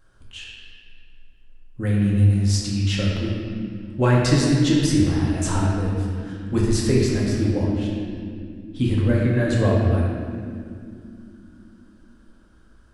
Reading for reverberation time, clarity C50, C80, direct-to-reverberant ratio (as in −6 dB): 2.5 s, −0.5 dB, 1.0 dB, −4.5 dB